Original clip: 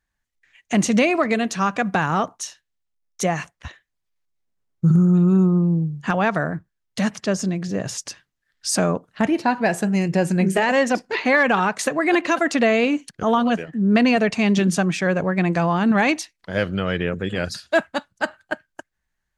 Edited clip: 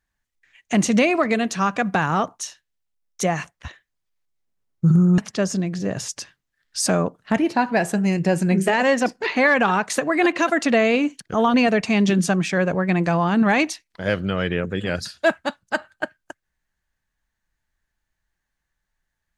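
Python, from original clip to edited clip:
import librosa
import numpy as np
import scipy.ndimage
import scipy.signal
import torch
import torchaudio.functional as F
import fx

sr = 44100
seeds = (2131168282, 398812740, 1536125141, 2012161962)

y = fx.edit(x, sr, fx.cut(start_s=5.18, length_s=1.89),
    fx.cut(start_s=13.43, length_s=0.6), tone=tone)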